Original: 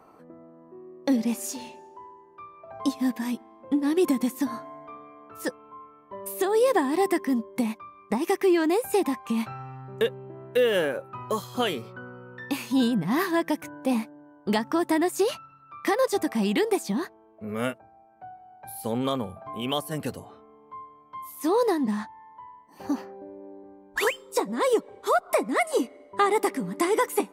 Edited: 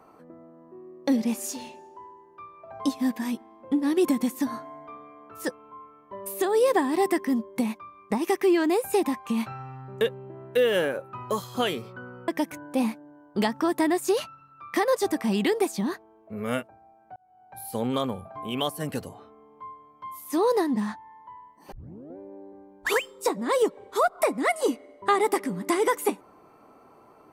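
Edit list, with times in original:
12.28–13.39 cut
18.27–18.73 fade in
22.83 tape start 0.45 s

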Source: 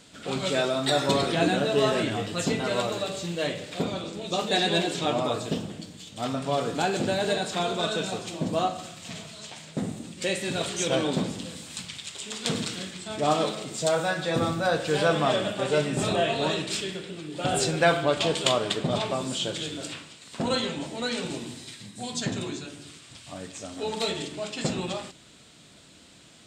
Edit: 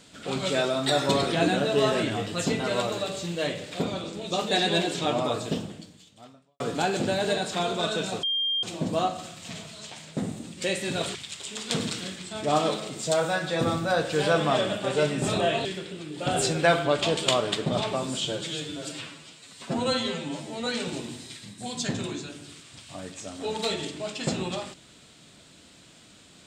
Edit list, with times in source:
5.59–6.6 fade out quadratic
8.23 add tone 3200 Hz -23.5 dBFS 0.40 s
10.75–11.9 cut
16.4–16.83 cut
19.43–21.04 stretch 1.5×

